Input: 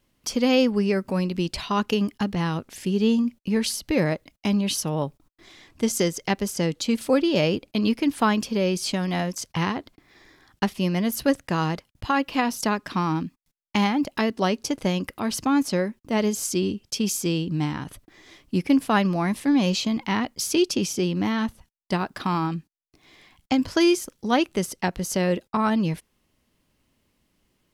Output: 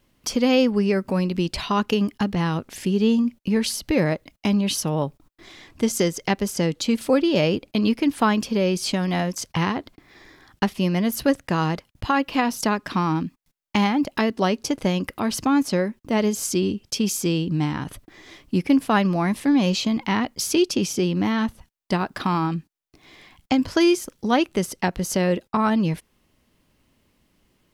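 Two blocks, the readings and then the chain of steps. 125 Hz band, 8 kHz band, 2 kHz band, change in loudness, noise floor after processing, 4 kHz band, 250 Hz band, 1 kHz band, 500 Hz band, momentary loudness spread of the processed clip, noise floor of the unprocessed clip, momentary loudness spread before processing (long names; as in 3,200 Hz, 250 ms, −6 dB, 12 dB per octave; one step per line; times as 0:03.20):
+2.0 dB, +1.0 dB, +1.5 dB, +1.5 dB, −67 dBFS, +1.0 dB, +2.0 dB, +2.0 dB, +2.0 dB, 7 LU, −72 dBFS, 7 LU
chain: parametric band 8,700 Hz −2.5 dB 2.2 octaves
in parallel at −2 dB: downward compressor, threshold −30 dBFS, peak gain reduction 14.5 dB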